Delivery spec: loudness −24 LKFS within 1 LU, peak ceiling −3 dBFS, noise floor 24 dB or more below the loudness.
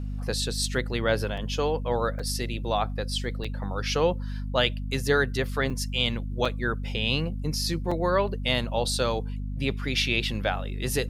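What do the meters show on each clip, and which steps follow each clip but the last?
number of dropouts 6; longest dropout 5.0 ms; mains hum 50 Hz; hum harmonics up to 250 Hz; level of the hum −29 dBFS; integrated loudness −27.5 LKFS; sample peak −8.0 dBFS; target loudness −24.0 LKFS
→ repair the gap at 0:01.37/0:02.19/0:03.44/0:05.70/0:06.45/0:07.91, 5 ms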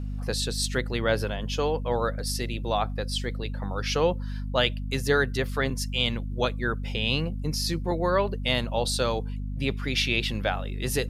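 number of dropouts 0; mains hum 50 Hz; hum harmonics up to 250 Hz; level of the hum −29 dBFS
→ mains-hum notches 50/100/150/200/250 Hz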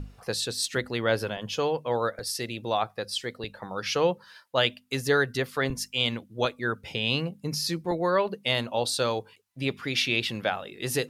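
mains hum none found; integrated loudness −28.0 LKFS; sample peak −8.5 dBFS; target loudness −24.0 LKFS
→ level +4 dB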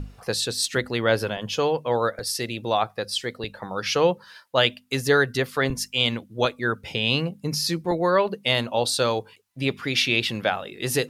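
integrated loudness −24.0 LKFS; sample peak −4.5 dBFS; background noise floor −55 dBFS

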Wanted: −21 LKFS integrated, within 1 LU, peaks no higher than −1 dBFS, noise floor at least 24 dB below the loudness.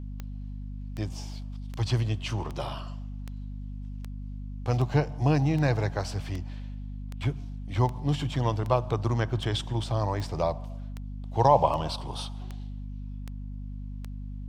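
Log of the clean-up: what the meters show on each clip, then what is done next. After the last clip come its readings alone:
number of clicks 19; mains hum 50 Hz; hum harmonics up to 250 Hz; level of the hum −35 dBFS; integrated loudness −29.5 LKFS; sample peak −7.5 dBFS; target loudness −21.0 LKFS
→ click removal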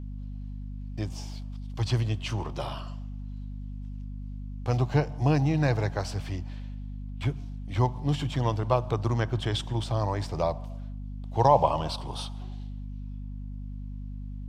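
number of clicks 0; mains hum 50 Hz; hum harmonics up to 250 Hz; level of the hum −35 dBFS
→ mains-hum notches 50/100/150/200/250 Hz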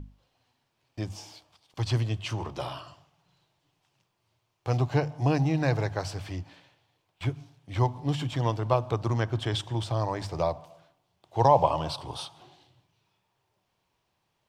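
mains hum none found; integrated loudness −29.0 LKFS; sample peak −7.5 dBFS; target loudness −21.0 LKFS
→ level +8 dB
brickwall limiter −1 dBFS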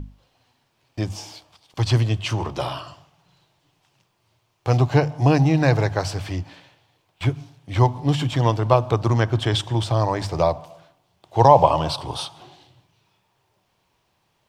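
integrated loudness −21.0 LKFS; sample peak −1.0 dBFS; background noise floor −69 dBFS

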